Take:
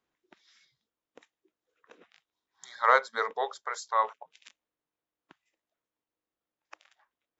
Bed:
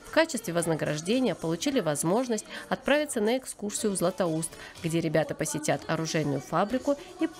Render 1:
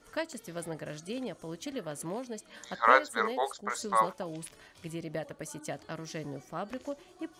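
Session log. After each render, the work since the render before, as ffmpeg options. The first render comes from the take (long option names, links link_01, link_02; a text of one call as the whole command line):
ffmpeg -i in.wav -i bed.wav -filter_complex "[1:a]volume=-11.5dB[link_01];[0:a][link_01]amix=inputs=2:normalize=0" out.wav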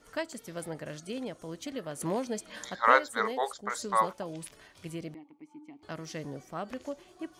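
ffmpeg -i in.wav -filter_complex "[0:a]asettb=1/sr,asplit=3[link_01][link_02][link_03];[link_01]atrim=end=2.014[link_04];[link_02]atrim=start=2.01:end=2.7,asetpts=PTS-STARTPTS,afade=type=in:duration=0.004:curve=qsin,afade=type=out:start_time=0.686:duration=0.004:curve=qsin,acontrast=46[link_05];[link_03]atrim=start=2.696[link_06];[link_04][link_05]acrossfade=duration=0.004:curve1=hsin:curve2=qsin[link_07];[link_07][link_06]acrossfade=duration=0.004:curve1=qsin:curve2=hsin,asettb=1/sr,asplit=3[link_08][link_09][link_10];[link_08]atrim=end=5.144[link_11];[link_09]atrim=start=5.14:end=5.83,asetpts=PTS-STARTPTS,afade=type=in:duration=0.004:curve=qsin,afade=type=out:start_time=0.686:duration=0.004:curve=qsin,asplit=3[link_12][link_13][link_14];[link_12]bandpass=frequency=300:width_type=q:width=8,volume=0dB[link_15];[link_13]bandpass=frequency=870:width_type=q:width=8,volume=-6dB[link_16];[link_14]bandpass=frequency=2240:width_type=q:width=8,volume=-9dB[link_17];[link_15][link_16][link_17]amix=inputs=3:normalize=0[link_18];[link_10]atrim=start=5.826[link_19];[link_11][link_18]acrossfade=duration=0.004:curve1=hsin:curve2=qsin[link_20];[link_20][link_19]acrossfade=duration=0.004:curve1=qsin:curve2=hsin" out.wav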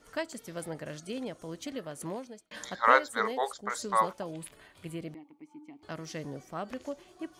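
ffmpeg -i in.wav -filter_complex "[0:a]asettb=1/sr,asplit=3[link_01][link_02][link_03];[link_01]atrim=end=4.314[link_04];[link_02]atrim=start=4.31:end=5.08,asetpts=PTS-STARTPTS,afade=type=in:duration=0.004:curve=qsin,afade=type=out:start_time=0.766:duration=0.004:curve=qsin,equalizer=frequency=5700:width_type=o:width=0.46:gain=-11.5[link_05];[link_03]atrim=start=5.076[link_06];[link_04][link_05]acrossfade=duration=0.004:curve1=hsin:curve2=qsin[link_07];[link_07][link_06]acrossfade=duration=0.004:curve1=qsin:curve2=hsin,asplit=2[link_08][link_09];[link_08]atrim=end=2.51,asetpts=PTS-STARTPTS,afade=type=out:start_time=1.72:duration=0.79[link_10];[link_09]atrim=start=2.51,asetpts=PTS-STARTPTS,afade=type=in:duration=0.004:curve=hsin[link_11];[link_10][link_11]concat=n=2:v=0:a=1" out.wav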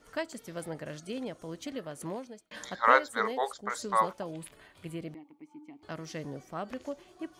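ffmpeg -i in.wav -af "equalizer=frequency=9500:width=0.49:gain=-2.5" out.wav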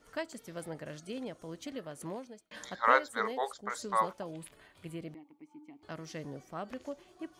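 ffmpeg -i in.wav -af "volume=-3dB" out.wav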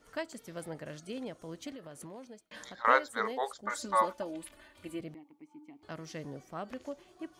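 ffmpeg -i in.wav -filter_complex "[0:a]asettb=1/sr,asplit=3[link_01][link_02][link_03];[link_01]atrim=end=1.724[link_04];[link_02]atrim=start=1.72:end=2.85,asetpts=PTS-STARTPTS,afade=type=in:duration=0.004:curve=qsin,afade=type=out:start_time=1.126:duration=0.004:curve=qsin,acompressor=threshold=-42dB:ratio=6:attack=3.2:release=140:knee=1:detection=peak[link_05];[link_03]atrim=start=2.846[link_06];[link_04][link_05]acrossfade=duration=0.004:curve1=hsin:curve2=qsin[link_07];[link_07][link_06]acrossfade=duration=0.004:curve1=qsin:curve2=hsin,asettb=1/sr,asplit=3[link_08][link_09][link_10];[link_08]atrim=end=3.634[link_11];[link_09]atrim=start=3.63:end=5,asetpts=PTS-STARTPTS,afade=type=in:duration=0.004:curve=qsin,afade=type=out:start_time=1.366:duration=0.004:curve=qsin,aecho=1:1:3.4:0.82,atrim=end_sample=60417[link_12];[link_10]atrim=start=4.996[link_13];[link_11][link_12]acrossfade=duration=0.004:curve1=hsin:curve2=qsin[link_14];[link_14][link_13]acrossfade=duration=0.004:curve1=qsin:curve2=hsin" out.wav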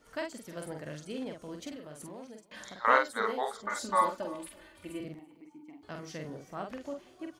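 ffmpeg -i in.wav -filter_complex "[0:a]asplit=2[link_01][link_02];[link_02]adelay=46,volume=-4dB[link_03];[link_01][link_03]amix=inputs=2:normalize=0,aecho=1:1:333:0.0794" out.wav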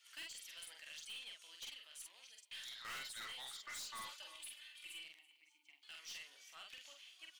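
ffmpeg -i in.wav -af "highpass=frequency=2900:width_type=q:width=2.7,aeval=exprs='(tanh(178*val(0)+0.1)-tanh(0.1))/178':channel_layout=same" out.wav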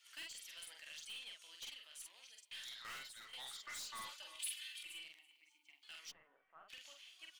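ffmpeg -i in.wav -filter_complex "[0:a]asettb=1/sr,asplit=3[link_01][link_02][link_03];[link_01]atrim=end=4.394[link_04];[link_02]atrim=start=4.39:end=4.83,asetpts=PTS-STARTPTS,afade=type=in:duration=0.004:curve=qsin,afade=type=out:start_time=0.436:duration=0.004:curve=qsin,tiltshelf=frequency=1100:gain=-9.5[link_05];[link_03]atrim=start=4.826[link_06];[link_04][link_05]acrossfade=duration=0.004:curve1=hsin:curve2=qsin[link_07];[link_07][link_06]acrossfade=duration=0.004:curve1=qsin:curve2=hsin,asplit=3[link_08][link_09][link_10];[link_08]afade=type=out:start_time=6.1:duration=0.02[link_11];[link_09]lowpass=frequency=1400:width=0.5412,lowpass=frequency=1400:width=1.3066,afade=type=in:start_time=6.1:duration=0.02,afade=type=out:start_time=6.68:duration=0.02[link_12];[link_10]afade=type=in:start_time=6.68:duration=0.02[link_13];[link_11][link_12][link_13]amix=inputs=3:normalize=0,asplit=2[link_14][link_15];[link_14]atrim=end=3.33,asetpts=PTS-STARTPTS,afade=type=out:start_time=2.74:duration=0.59:silence=0.281838[link_16];[link_15]atrim=start=3.33,asetpts=PTS-STARTPTS,afade=type=in:duration=0.004:curve=hsin:silence=0.281838[link_17];[link_16][link_17]concat=n=2:v=0:a=1" out.wav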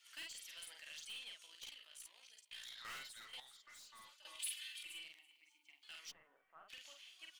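ffmpeg -i in.wav -filter_complex "[0:a]asettb=1/sr,asplit=3[link_01][link_02][link_03];[link_01]atrim=end=1.464[link_04];[link_02]atrim=start=1.46:end=2.78,asetpts=PTS-STARTPTS,afade=type=in:duration=0.004:curve=qsin,afade=type=out:start_time=1.316:duration=0.004:curve=qsin,tremolo=f=57:d=0.571[link_05];[link_03]atrim=start=2.776[link_06];[link_04][link_05]acrossfade=duration=0.004:curve1=hsin:curve2=qsin[link_07];[link_07][link_06]acrossfade=duration=0.004:curve1=qsin:curve2=hsin,asplit=3[link_08][link_09][link_10];[link_08]atrim=end=3.402[link_11];[link_09]atrim=start=3.398:end=4.252,asetpts=PTS-STARTPTS,volume=-11.5dB[link_12];[link_10]atrim=start=4.248[link_13];[link_11][link_12]acrossfade=duration=0.004:curve1=hsin:curve2=hsin[link_14];[link_14][link_13]acrossfade=duration=0.004:curve1=hsin:curve2=hsin" out.wav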